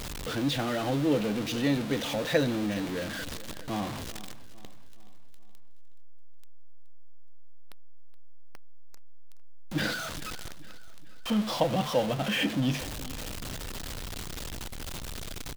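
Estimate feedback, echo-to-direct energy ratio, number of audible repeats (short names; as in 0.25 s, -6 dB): 47%, -16.0 dB, 3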